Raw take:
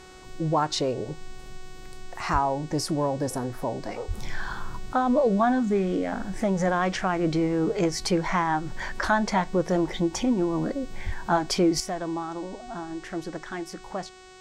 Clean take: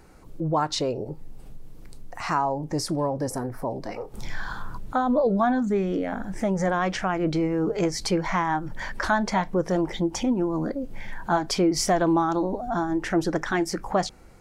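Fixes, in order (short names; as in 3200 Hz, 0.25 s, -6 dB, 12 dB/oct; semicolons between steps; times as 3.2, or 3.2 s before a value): de-hum 371.4 Hz, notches 23; 2.32–2.44 HPF 140 Hz 24 dB/oct; 4.07–4.19 HPF 140 Hz 24 dB/oct; 11.05–11.17 HPF 140 Hz 24 dB/oct; 11.8 gain correction +9.5 dB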